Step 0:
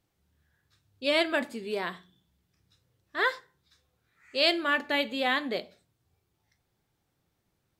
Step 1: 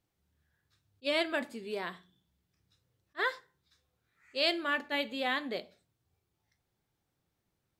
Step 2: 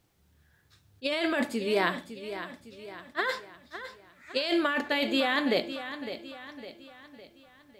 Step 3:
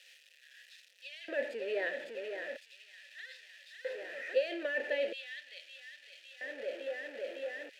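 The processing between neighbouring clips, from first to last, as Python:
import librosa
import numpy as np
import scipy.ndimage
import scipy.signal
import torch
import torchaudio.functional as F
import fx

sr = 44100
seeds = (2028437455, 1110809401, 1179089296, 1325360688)

y1 = fx.attack_slew(x, sr, db_per_s=600.0)
y1 = y1 * 10.0 ** (-5.0 / 20.0)
y2 = fx.over_compress(y1, sr, threshold_db=-35.0, ratio=-1.0)
y2 = fx.echo_feedback(y2, sr, ms=557, feedback_pct=47, wet_db=-11.5)
y2 = y2 * 10.0 ** (8.5 / 20.0)
y3 = y2 + 0.5 * 10.0 ** (-26.5 / 20.0) * np.sign(y2)
y3 = fx.filter_lfo_highpass(y3, sr, shape='square', hz=0.39, low_hz=340.0, high_hz=3400.0, q=0.86)
y3 = fx.vowel_filter(y3, sr, vowel='e')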